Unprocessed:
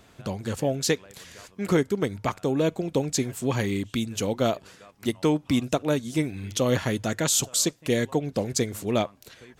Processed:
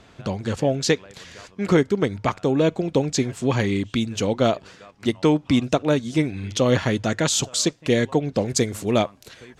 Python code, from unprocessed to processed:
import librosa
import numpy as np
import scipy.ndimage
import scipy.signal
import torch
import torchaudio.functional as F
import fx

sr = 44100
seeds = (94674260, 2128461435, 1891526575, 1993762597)

y = fx.lowpass(x, sr, hz=fx.steps((0.0, 6000.0), (8.48, 9900.0)), slope=12)
y = y * 10.0 ** (4.5 / 20.0)